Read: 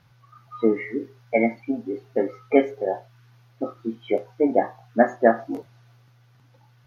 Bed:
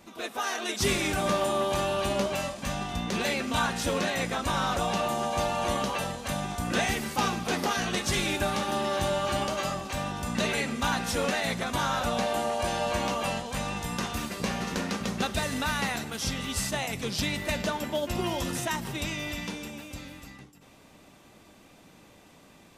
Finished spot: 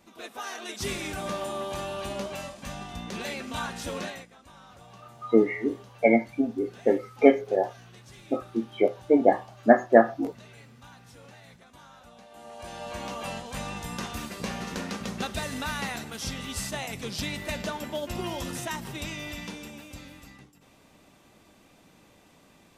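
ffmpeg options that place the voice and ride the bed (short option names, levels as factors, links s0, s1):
-filter_complex "[0:a]adelay=4700,volume=1.06[s0];[1:a]volume=5.31,afade=t=out:st=4.05:d=0.21:silence=0.133352,afade=t=in:st=12.3:d=1.28:silence=0.0944061[s1];[s0][s1]amix=inputs=2:normalize=0"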